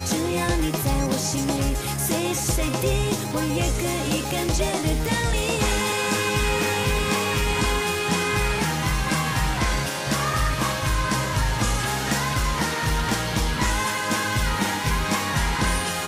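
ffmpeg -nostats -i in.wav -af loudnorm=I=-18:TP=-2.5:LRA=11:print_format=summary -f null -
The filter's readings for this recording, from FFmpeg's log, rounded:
Input Integrated:    -23.3 LUFS
Input True Peak:     -12.7 dBTP
Input LRA:             1.1 LU
Input Threshold:     -33.3 LUFS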